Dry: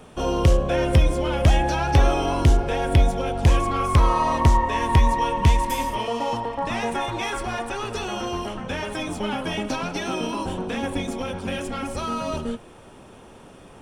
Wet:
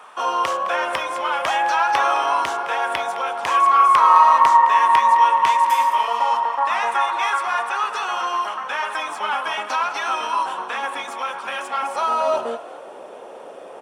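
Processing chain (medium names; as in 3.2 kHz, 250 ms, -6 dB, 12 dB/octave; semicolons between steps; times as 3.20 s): treble shelf 2.2 kHz -8.5 dB; high-pass sweep 1.1 kHz -> 540 Hz, 11.50–12.88 s; frequency-shifting echo 212 ms, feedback 33%, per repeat +62 Hz, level -15.5 dB; trim +7 dB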